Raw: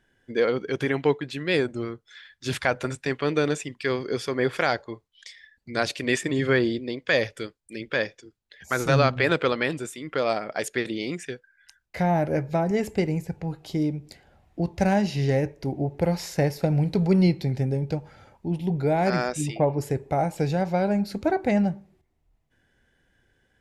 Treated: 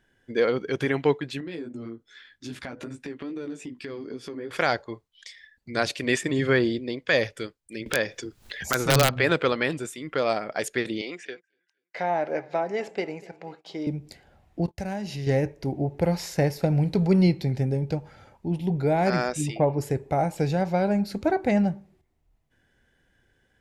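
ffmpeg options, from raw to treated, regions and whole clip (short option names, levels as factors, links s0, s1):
-filter_complex "[0:a]asettb=1/sr,asplit=3[s0][s1][s2];[s0]atrim=end=1.404[s3];[s1]atrim=start=1.4:end=4.51,asetpts=PTS-STARTPTS,afade=t=in:d=0.004:c=qsin,afade=t=out:st=3.106:d=0.004:c=qsin,equalizer=f=270:t=o:w=0.99:g=14.5,flanger=delay=15.5:depth=2.7:speed=2.5,acompressor=threshold=0.0178:ratio=4:attack=3.2:release=140:knee=1:detection=peak[s4];[s2]atrim=start=4.506[s5];[s3][s4]acrossfade=d=0.004:c1=hsin:c2=qsin[s6];[s6][s5]acrossfade=d=0.004:c1=qsin:c2=hsin,asettb=1/sr,asplit=3[s7][s8][s9];[s7]atrim=end=7.864[s10];[s8]atrim=start=7.86:end=9.14,asetpts=PTS-STARTPTS,afade=t=in:d=0.004:c=qsin,afade=t=out:st=1.276:d=0.004:c=qsin,acompressor=mode=upward:threshold=0.0794:ratio=2.5:attack=3.2:release=140:knee=2.83:detection=peak,aeval=exprs='(mod(3.16*val(0)+1,2)-1)/3.16':c=same[s11];[s9]atrim=start=9.136[s12];[s10][s11]acrossfade=d=0.004:c1=hsin:c2=qsin[s13];[s13][s12]acrossfade=d=0.004:c1=qsin:c2=hsin,asettb=1/sr,asplit=3[s14][s15][s16];[s14]atrim=end=11.014[s17];[s15]atrim=start=11.01:end=13.87,asetpts=PTS-STARTPTS,afade=t=in:d=0.004:c=qsin,afade=t=out:st=2.856:d=0.004:c=qsin,aecho=1:1:243|486|729:0.0794|0.0397|0.0199,atrim=end_sample=126126,agate=range=0.112:threshold=0.00398:ratio=16:release=100:detection=peak,highpass=440,lowpass=4600[s18];[s16]atrim=start=13.866[s19];[s17][s18]acrossfade=d=0.004:c1=hsin:c2=qsin[s20];[s20][s19]acrossfade=d=0.004:c1=qsin:c2=hsin,asettb=1/sr,asplit=3[s21][s22][s23];[s21]atrim=end=14.674[s24];[s22]atrim=start=14.67:end=15.27,asetpts=PTS-STARTPTS,afade=t=in:d=0.004:c=qsin,afade=t=out:st=0.596:d=0.004:c=qsin,agate=range=0.0251:threshold=0.00708:ratio=16:release=100:detection=peak,highshelf=f=7300:g=5.5,acompressor=threshold=0.0224:ratio=2.5:attack=3.2:release=140:knee=1:detection=peak[s25];[s23]atrim=start=15.266[s26];[s24][s25]acrossfade=d=0.004:c1=hsin:c2=qsin[s27];[s27][s26]acrossfade=d=0.004:c1=qsin:c2=hsin"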